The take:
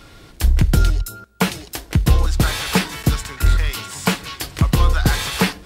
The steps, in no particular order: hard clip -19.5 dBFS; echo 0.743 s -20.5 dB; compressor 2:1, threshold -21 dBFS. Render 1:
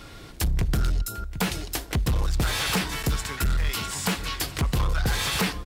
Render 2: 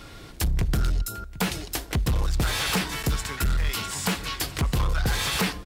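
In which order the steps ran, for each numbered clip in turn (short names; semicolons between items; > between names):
echo > compressor > hard clip; compressor > echo > hard clip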